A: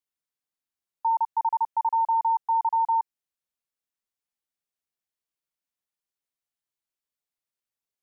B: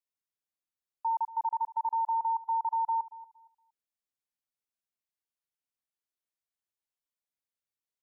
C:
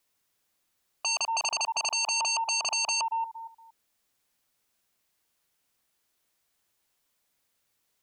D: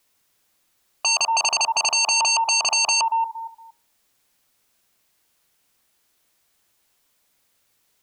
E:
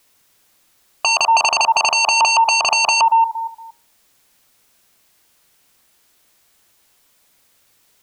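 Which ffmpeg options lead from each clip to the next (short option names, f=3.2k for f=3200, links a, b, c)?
-filter_complex "[0:a]asplit=2[a][b];[b]adelay=232,lowpass=f=910:p=1,volume=-14.5dB,asplit=2[c][d];[d]adelay=232,lowpass=f=910:p=1,volume=0.32,asplit=2[e][f];[f]adelay=232,lowpass=f=910:p=1,volume=0.32[g];[a][c][e][g]amix=inputs=4:normalize=0,volume=-6dB"
-af "aeval=exprs='0.0596*sin(PI/2*5.01*val(0)/0.0596)':c=same"
-af "bandreject=f=77.65:t=h:w=4,bandreject=f=155.3:t=h:w=4,bandreject=f=232.95:t=h:w=4,bandreject=f=310.6:t=h:w=4,bandreject=f=388.25:t=h:w=4,bandreject=f=465.9:t=h:w=4,bandreject=f=543.55:t=h:w=4,bandreject=f=621.2:t=h:w=4,bandreject=f=698.85:t=h:w=4,bandreject=f=776.5:t=h:w=4,bandreject=f=854.15:t=h:w=4,bandreject=f=931.8:t=h:w=4,bandreject=f=1.00945k:t=h:w=4,bandreject=f=1.0871k:t=h:w=4,bandreject=f=1.16475k:t=h:w=4,bandreject=f=1.2424k:t=h:w=4,bandreject=f=1.32005k:t=h:w=4,bandreject=f=1.3977k:t=h:w=4,bandreject=f=1.47535k:t=h:w=4,bandreject=f=1.553k:t=h:w=4,bandreject=f=1.63065k:t=h:w=4,bandreject=f=1.7083k:t=h:w=4,bandreject=f=1.78595k:t=h:w=4,bandreject=f=1.8636k:t=h:w=4,bandreject=f=1.94125k:t=h:w=4,bandreject=f=2.0189k:t=h:w=4,volume=8.5dB"
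-filter_complex "[0:a]acrossover=split=3200[a][b];[b]acompressor=threshold=-29dB:ratio=4:attack=1:release=60[c];[a][c]amix=inputs=2:normalize=0,volume=8.5dB"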